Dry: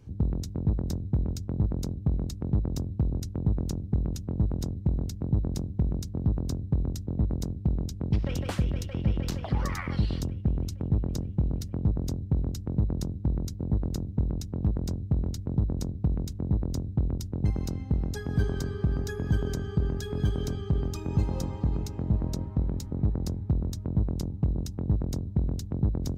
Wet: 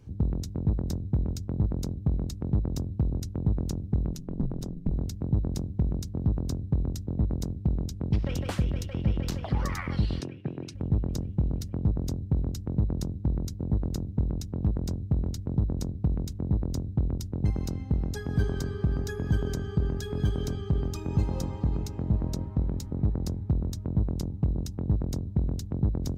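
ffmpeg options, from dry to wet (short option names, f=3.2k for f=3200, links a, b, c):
-filter_complex "[0:a]asettb=1/sr,asplit=3[a][b][c];[a]atrim=end=4.124[d];[b]atrim=start=4.12:end=4.92,asetpts=PTS-STARTPTS,afade=t=in:d=0.004:c=qsin,afade=t=out:st=0.796:d=0.004:c=qsin,aeval=exprs='val(0)*sin(2*PI*76*n/s)':c=same[e];[c]atrim=start=4.916[f];[d][e]acrossfade=d=0.004:c1=hsin:c2=qsin[g];[g][f]acrossfade=d=0.004:c1=qsin:c2=hsin,asettb=1/sr,asplit=3[h][i][j];[h]atrim=end=10.204[k];[i]atrim=start=10.2:end=10.75,asetpts=PTS-STARTPTS,afade=t=in:d=0.004:c=qsin,afade=t=out:st=0.546:d=0.004:c=qsin,highpass=f=140:w=0.5412,highpass=f=140:w=1.3066,equalizer=f=200:t=q:w=4:g=-9,equalizer=f=360:t=q:w=4:g=4,equalizer=f=1.7k:t=q:w=4:g=8,equalizer=f=2.5k:t=q:w=4:g=10,equalizer=f=7.3k:t=q:w=4:g=-9,lowpass=f=9.6k:w=0.5412,lowpass=f=9.6k:w=1.3066[l];[j]atrim=start=10.746[m];[k][l]acrossfade=d=0.004:c1=hsin:c2=qsin[n];[n][m]acrossfade=d=0.004:c1=qsin:c2=hsin"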